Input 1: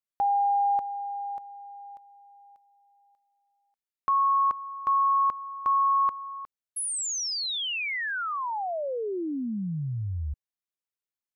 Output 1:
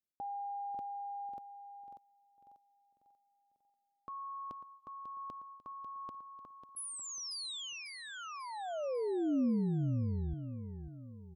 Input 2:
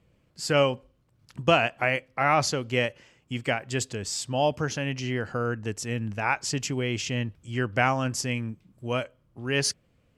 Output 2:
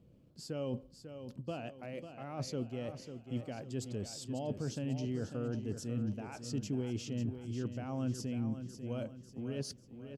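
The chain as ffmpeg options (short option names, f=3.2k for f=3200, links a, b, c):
-af "areverse,acompressor=threshold=-34dB:ratio=6:attack=1.7:release=139:knee=6:detection=rms,areverse,equalizer=f=125:t=o:w=1:g=4,equalizer=f=250:t=o:w=1:g=8,equalizer=f=500:t=o:w=1:g=3,equalizer=f=1k:t=o:w=1:g=-4,equalizer=f=2k:t=o:w=1:g=-11,equalizer=f=8k:t=o:w=1:g=-5,aecho=1:1:545|1090|1635|2180|2725:0.335|0.147|0.0648|0.0285|0.0126,volume=-3dB"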